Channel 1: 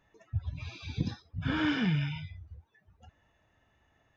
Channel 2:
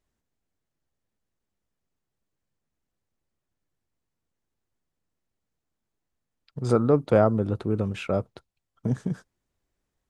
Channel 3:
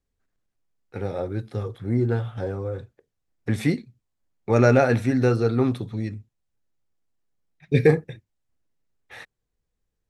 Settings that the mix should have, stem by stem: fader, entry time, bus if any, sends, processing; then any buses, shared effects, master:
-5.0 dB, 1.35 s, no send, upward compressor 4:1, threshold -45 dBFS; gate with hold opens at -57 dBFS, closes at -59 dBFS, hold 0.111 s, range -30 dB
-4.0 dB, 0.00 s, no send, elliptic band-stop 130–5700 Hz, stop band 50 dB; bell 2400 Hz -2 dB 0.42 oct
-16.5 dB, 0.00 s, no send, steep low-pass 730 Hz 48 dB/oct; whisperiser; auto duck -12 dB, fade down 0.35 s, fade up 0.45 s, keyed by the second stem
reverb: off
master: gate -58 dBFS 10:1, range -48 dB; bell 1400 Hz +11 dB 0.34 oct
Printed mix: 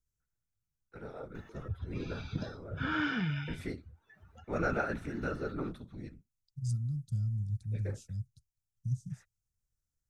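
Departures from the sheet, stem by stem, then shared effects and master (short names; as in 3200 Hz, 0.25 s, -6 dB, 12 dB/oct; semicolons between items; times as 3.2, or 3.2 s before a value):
stem 3: missing steep low-pass 730 Hz 48 dB/oct; master: missing gate -58 dBFS 10:1, range -48 dB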